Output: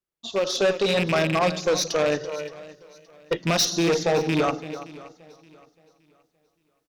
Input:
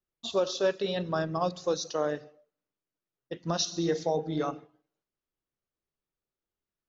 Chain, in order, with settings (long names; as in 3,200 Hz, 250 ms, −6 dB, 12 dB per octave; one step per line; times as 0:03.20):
loose part that buzzes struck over −35 dBFS, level −26 dBFS
single-tap delay 332 ms −17.5 dB
automatic gain control gain up to 14 dB
0:02.20–0:03.37: comb filter 2.1 ms, depth 93%
tube saturation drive 16 dB, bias 0.3
low-shelf EQ 85 Hz −6.5 dB
feedback echo with a swinging delay time 571 ms, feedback 33%, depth 60 cents, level −20 dB